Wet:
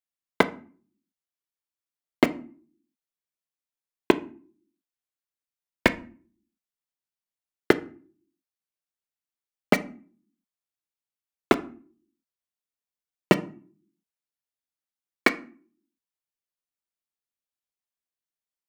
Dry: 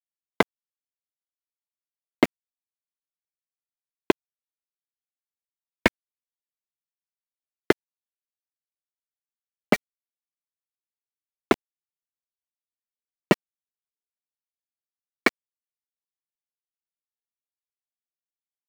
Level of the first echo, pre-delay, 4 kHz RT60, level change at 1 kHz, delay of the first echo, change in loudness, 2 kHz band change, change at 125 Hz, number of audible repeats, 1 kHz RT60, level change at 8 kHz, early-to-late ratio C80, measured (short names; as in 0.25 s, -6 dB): none, 11 ms, 0.30 s, +0.5 dB, none, +0.5 dB, +0.5 dB, +0.5 dB, none, 0.40 s, 0.0 dB, 22.5 dB